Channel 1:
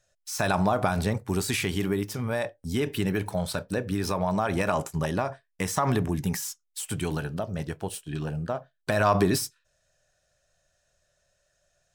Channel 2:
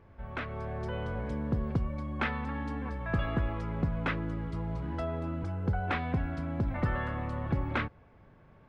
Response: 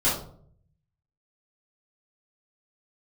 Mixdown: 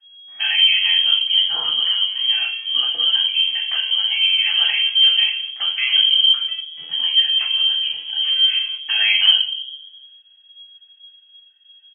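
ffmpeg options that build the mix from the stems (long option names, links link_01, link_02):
-filter_complex "[0:a]aemphasis=mode=reproduction:type=bsi,aecho=1:1:5.7:0.56,bandreject=frequency=120.5:width_type=h:width=4,bandreject=frequency=241:width_type=h:width=4,bandreject=frequency=361.5:width_type=h:width=4,bandreject=frequency=482:width_type=h:width=4,bandreject=frequency=602.5:width_type=h:width=4,bandreject=frequency=723:width_type=h:width=4,bandreject=frequency=843.5:width_type=h:width=4,bandreject=frequency=964:width_type=h:width=4,bandreject=frequency=1084.5:width_type=h:width=4,bandreject=frequency=1205:width_type=h:width=4,bandreject=frequency=1325.5:width_type=h:width=4,bandreject=frequency=1446:width_type=h:width=4,bandreject=frequency=1566.5:width_type=h:width=4,bandreject=frequency=1687:width_type=h:width=4,bandreject=frequency=1807.5:width_type=h:width=4,bandreject=frequency=1928:width_type=h:width=4,bandreject=frequency=2048.5:width_type=h:width=4,bandreject=frequency=2169:width_type=h:width=4,bandreject=frequency=2289.5:width_type=h:width=4,bandreject=frequency=2410:width_type=h:width=4,bandreject=frequency=2530.5:width_type=h:width=4,volume=-6dB,asplit=3[link_01][link_02][link_03];[link_02]volume=-8.5dB[link_04];[1:a]adelay=1500,volume=-4.5dB[link_05];[link_03]apad=whole_len=449353[link_06];[link_05][link_06]sidechaingate=range=-14dB:threshold=-54dB:ratio=16:detection=peak[link_07];[2:a]atrim=start_sample=2205[link_08];[link_04][link_08]afir=irnorm=-1:irlink=0[link_09];[link_01][link_07][link_09]amix=inputs=3:normalize=0,lowpass=frequency=2800:width_type=q:width=0.5098,lowpass=frequency=2800:width_type=q:width=0.6013,lowpass=frequency=2800:width_type=q:width=0.9,lowpass=frequency=2800:width_type=q:width=2.563,afreqshift=-3300"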